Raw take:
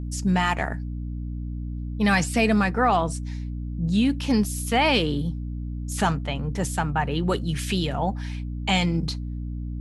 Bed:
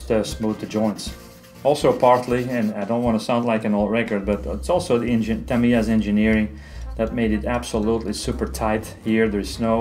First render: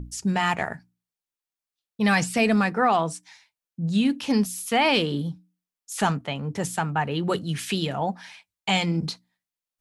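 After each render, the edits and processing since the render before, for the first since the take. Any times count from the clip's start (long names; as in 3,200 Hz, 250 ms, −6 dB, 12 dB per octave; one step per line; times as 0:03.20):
mains-hum notches 60/120/180/240/300 Hz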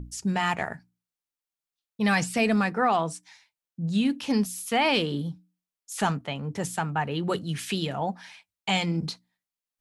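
level −2.5 dB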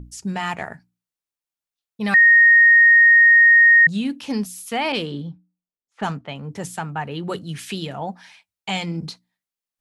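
0:02.14–0:03.87: beep over 1,860 Hz −8 dBFS
0:04.92–0:06.29: low-pass that shuts in the quiet parts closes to 550 Hz, open at −21.5 dBFS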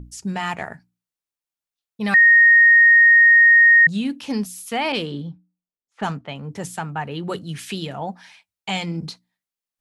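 no processing that can be heard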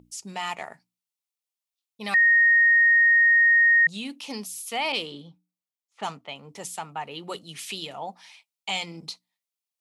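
high-pass filter 1,000 Hz 6 dB per octave
parametric band 1,600 Hz −12 dB 0.37 octaves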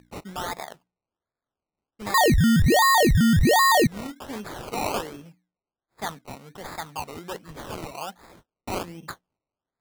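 sample-and-hold swept by an LFO 21×, swing 60% 1.3 Hz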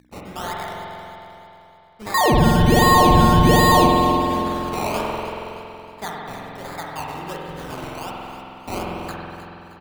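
repeating echo 311 ms, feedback 43%, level −14 dB
spring reverb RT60 3 s, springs 46 ms, chirp 80 ms, DRR −3 dB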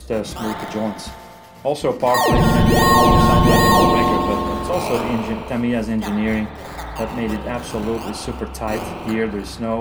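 mix in bed −2.5 dB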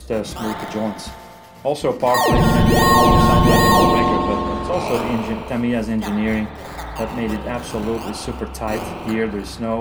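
0:03.99–0:04.88: high-frequency loss of the air 55 metres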